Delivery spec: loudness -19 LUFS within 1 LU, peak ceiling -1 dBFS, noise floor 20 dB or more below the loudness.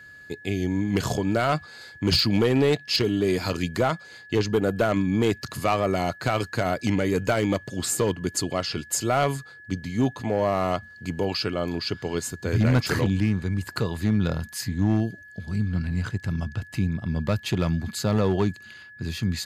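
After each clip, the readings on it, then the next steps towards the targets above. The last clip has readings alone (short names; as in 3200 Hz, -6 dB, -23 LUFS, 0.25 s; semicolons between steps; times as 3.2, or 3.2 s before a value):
clipped 0.8%; flat tops at -14.0 dBFS; steady tone 1700 Hz; tone level -44 dBFS; loudness -25.5 LUFS; peak -14.0 dBFS; loudness target -19.0 LUFS
-> clip repair -14 dBFS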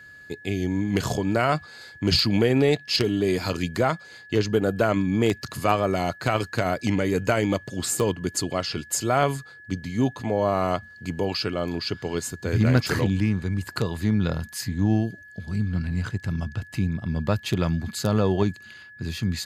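clipped 0.0%; steady tone 1700 Hz; tone level -44 dBFS
-> notch 1700 Hz, Q 30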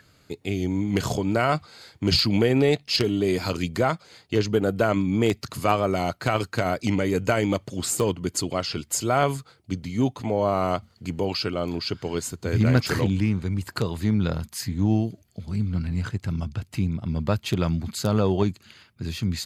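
steady tone none; loudness -25.0 LUFS; peak -5.0 dBFS; loudness target -19.0 LUFS
-> gain +6 dB; limiter -1 dBFS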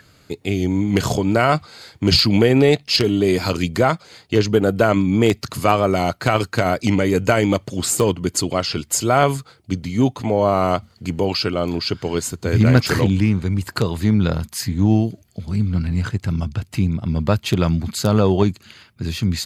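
loudness -19.0 LUFS; peak -1.0 dBFS; noise floor -54 dBFS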